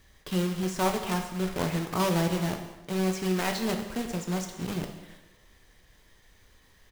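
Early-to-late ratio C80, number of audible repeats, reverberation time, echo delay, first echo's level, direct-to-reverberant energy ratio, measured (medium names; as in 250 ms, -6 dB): 9.0 dB, 1, 0.95 s, 196 ms, -19.0 dB, 4.0 dB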